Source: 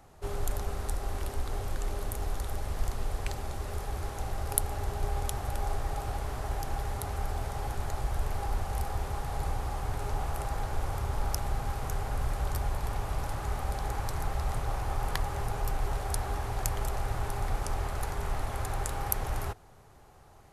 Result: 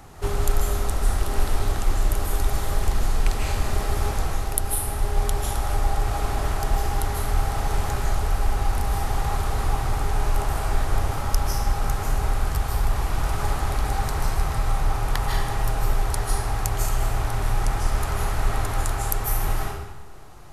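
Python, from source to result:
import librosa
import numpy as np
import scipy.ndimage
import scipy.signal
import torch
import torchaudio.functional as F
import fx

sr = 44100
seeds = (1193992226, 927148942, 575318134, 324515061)

y = fx.peak_eq(x, sr, hz=590.0, db=-5.5, octaves=0.7)
y = fx.rev_freeverb(y, sr, rt60_s=0.94, hf_ratio=0.95, predelay_ms=115, drr_db=-2.5)
y = fx.rider(y, sr, range_db=10, speed_s=0.5)
y = y * 10.0 ** (5.0 / 20.0)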